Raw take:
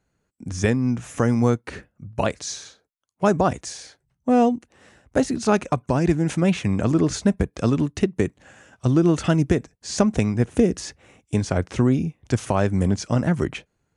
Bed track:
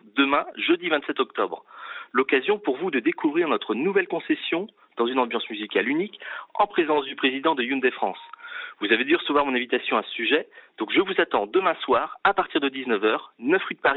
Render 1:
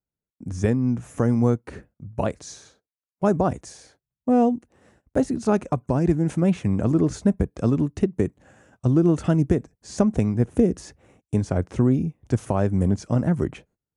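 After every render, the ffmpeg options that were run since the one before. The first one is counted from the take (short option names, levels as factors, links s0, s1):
-af "agate=range=0.112:threshold=0.00251:ratio=16:detection=peak,equalizer=f=3600:w=0.37:g=-11"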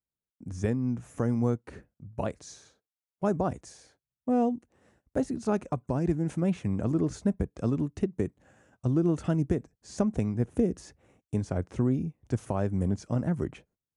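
-af "volume=0.447"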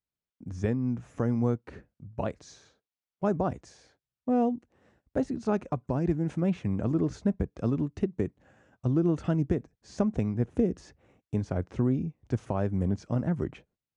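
-af "lowpass=5100"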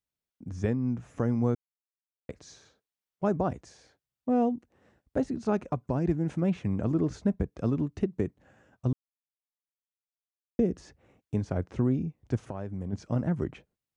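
-filter_complex "[0:a]asplit=3[s0][s1][s2];[s0]afade=t=out:st=12.4:d=0.02[s3];[s1]acompressor=threshold=0.0141:ratio=2:attack=3.2:release=140:knee=1:detection=peak,afade=t=in:st=12.4:d=0.02,afade=t=out:st=12.92:d=0.02[s4];[s2]afade=t=in:st=12.92:d=0.02[s5];[s3][s4][s5]amix=inputs=3:normalize=0,asplit=5[s6][s7][s8][s9][s10];[s6]atrim=end=1.55,asetpts=PTS-STARTPTS,afade=t=out:st=1.546:d=0.004:c=hsin[s11];[s7]atrim=start=1.55:end=2.29,asetpts=PTS-STARTPTS,volume=0[s12];[s8]atrim=start=2.29:end=8.93,asetpts=PTS-STARTPTS,afade=t=in:d=0.004:c=hsin,afade=t=out:st=6.636:d=0.004:c=hsin[s13];[s9]atrim=start=8.93:end=10.59,asetpts=PTS-STARTPTS,volume=0[s14];[s10]atrim=start=10.59,asetpts=PTS-STARTPTS,afade=t=in:d=0.004:c=hsin[s15];[s11][s12][s13][s14][s15]concat=n=5:v=0:a=1"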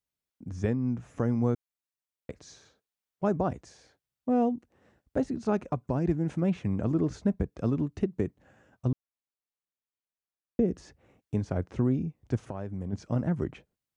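-filter_complex "[0:a]asettb=1/sr,asplit=3[s0][s1][s2];[s0]atrim=end=8.884[s3];[s1]atrim=start=8.88:end=10.68,asetpts=PTS-STARTPTS,afade=t=in:d=0.004:c=qsin,afade=t=out:st=1.796:d=0.004:c=qsin,highshelf=f=3400:g=-9.5[s4];[s2]atrim=start=10.676[s5];[s3][s4]acrossfade=d=0.004:c1=hsin:c2=qsin[s6];[s6][s5]acrossfade=d=0.004:c1=qsin:c2=hsin"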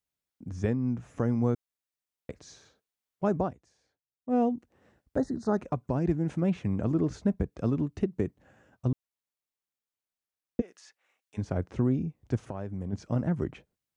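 -filter_complex "[0:a]asettb=1/sr,asplit=3[s0][s1][s2];[s0]atrim=end=5.174[s3];[s1]atrim=start=5.17:end=5.58,asetpts=PTS-STARTPTS,afade=t=in:d=0.004:c=qsin,afade=t=out:st=0.406:d=0.004:c=qsin,asuperstop=centerf=2700:order=12:qfactor=1.6[s4];[s2]atrim=start=5.576[s5];[s3][s4]acrossfade=d=0.004:c1=hsin:c2=qsin[s6];[s6][s5]acrossfade=d=0.004:c1=qsin:c2=hsin,asplit=3[s7][s8][s9];[s7]afade=t=out:st=10.6:d=0.02[s10];[s8]highpass=1400,afade=t=in:st=10.6:d=0.02,afade=t=out:st=11.37:d=0.02[s11];[s9]afade=t=in:st=11.37:d=0.02[s12];[s10][s11][s12]amix=inputs=3:normalize=0,asplit=3[s13][s14][s15];[s13]atrim=end=3.56,asetpts=PTS-STARTPTS,afade=t=out:st=3.44:d=0.12:c=qua:silence=0.188365[s16];[s14]atrim=start=3.56:end=4.22,asetpts=PTS-STARTPTS,volume=0.188[s17];[s15]atrim=start=4.22,asetpts=PTS-STARTPTS,afade=t=in:d=0.12:c=qua:silence=0.188365[s18];[s16][s17][s18]concat=n=3:v=0:a=1"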